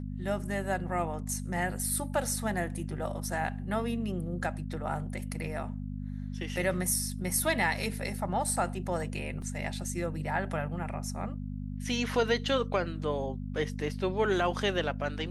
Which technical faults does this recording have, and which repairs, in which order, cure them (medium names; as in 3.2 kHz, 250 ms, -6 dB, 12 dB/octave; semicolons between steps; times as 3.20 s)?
hum 50 Hz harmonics 5 -37 dBFS
9.42 s: dropout 2.5 ms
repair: de-hum 50 Hz, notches 5; interpolate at 9.42 s, 2.5 ms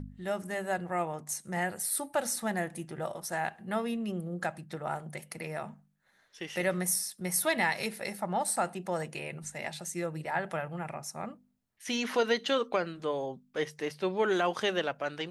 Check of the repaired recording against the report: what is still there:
nothing left